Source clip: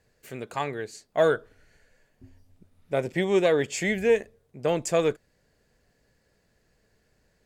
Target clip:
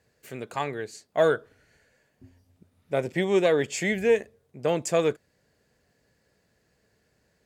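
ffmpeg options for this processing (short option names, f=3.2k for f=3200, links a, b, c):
-af "highpass=69"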